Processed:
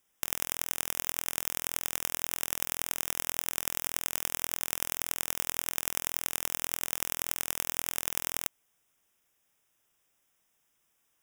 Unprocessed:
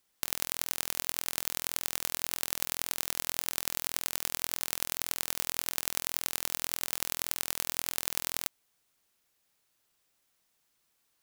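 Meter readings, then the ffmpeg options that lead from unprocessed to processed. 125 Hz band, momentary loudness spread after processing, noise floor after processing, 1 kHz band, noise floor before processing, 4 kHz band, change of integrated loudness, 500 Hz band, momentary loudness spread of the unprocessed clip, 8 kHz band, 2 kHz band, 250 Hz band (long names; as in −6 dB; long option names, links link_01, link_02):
+1.0 dB, 1 LU, −75 dBFS, +1.0 dB, −75 dBFS, −2.0 dB, +0.5 dB, +1.0 dB, 1 LU, +1.0 dB, +1.0 dB, +1.0 dB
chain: -af "asuperstop=centerf=4300:order=4:qfactor=3,volume=1dB"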